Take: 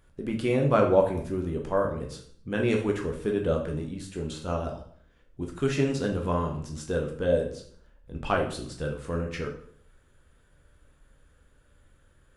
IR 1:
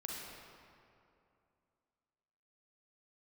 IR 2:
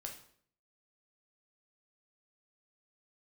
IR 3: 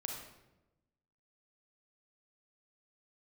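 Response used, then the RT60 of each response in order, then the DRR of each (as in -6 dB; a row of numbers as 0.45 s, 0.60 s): 2; 2.6 s, 0.60 s, 1.0 s; -3.0 dB, 1.0 dB, 1.0 dB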